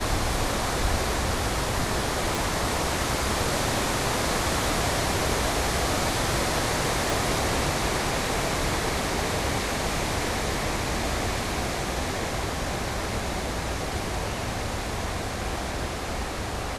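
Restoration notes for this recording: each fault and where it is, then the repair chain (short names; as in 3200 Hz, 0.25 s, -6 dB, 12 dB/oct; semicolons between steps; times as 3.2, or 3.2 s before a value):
2.35 pop
7.1 pop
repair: de-click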